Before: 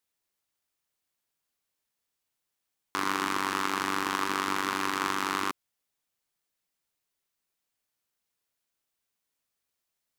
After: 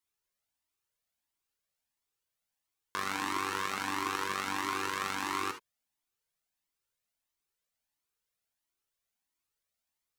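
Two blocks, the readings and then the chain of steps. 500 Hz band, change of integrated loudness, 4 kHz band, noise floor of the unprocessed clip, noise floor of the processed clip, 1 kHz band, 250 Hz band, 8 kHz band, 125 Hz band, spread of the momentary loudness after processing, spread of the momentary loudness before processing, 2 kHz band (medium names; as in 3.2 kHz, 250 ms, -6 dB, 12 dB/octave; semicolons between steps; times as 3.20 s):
-4.5 dB, -4.5 dB, -4.0 dB, -84 dBFS, under -85 dBFS, -4.5 dB, -6.0 dB, -3.0 dB, -3.5 dB, 5 LU, 4 LU, -4.0 dB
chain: gated-style reverb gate 90 ms rising, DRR 7.5 dB; Shepard-style flanger rising 1.5 Hz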